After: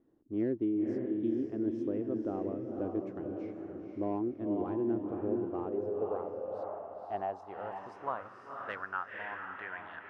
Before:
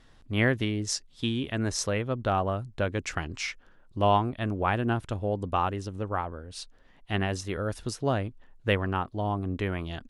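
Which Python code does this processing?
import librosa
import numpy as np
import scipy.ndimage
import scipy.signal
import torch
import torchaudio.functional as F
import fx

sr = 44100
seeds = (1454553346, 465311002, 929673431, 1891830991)

y = fx.high_shelf(x, sr, hz=2400.0, db=-9.5)
y = fx.echo_diffused(y, sr, ms=514, feedback_pct=43, wet_db=-3.5)
y = np.clip(10.0 ** (18.0 / 20.0) * y, -1.0, 1.0) / 10.0 ** (18.0 / 20.0)
y = fx.filter_sweep_bandpass(y, sr, from_hz=330.0, to_hz=1600.0, start_s=5.38, end_s=9.14, q=4.7)
y = F.gain(torch.from_numpy(y), 4.0).numpy()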